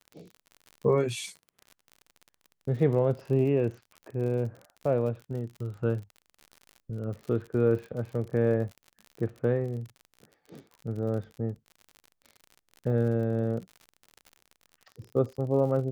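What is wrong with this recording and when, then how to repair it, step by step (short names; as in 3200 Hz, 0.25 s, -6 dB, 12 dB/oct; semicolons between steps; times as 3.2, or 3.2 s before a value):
crackle 52/s -38 dBFS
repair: de-click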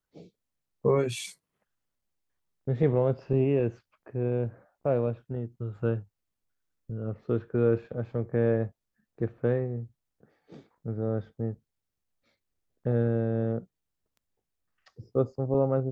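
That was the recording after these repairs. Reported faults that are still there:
none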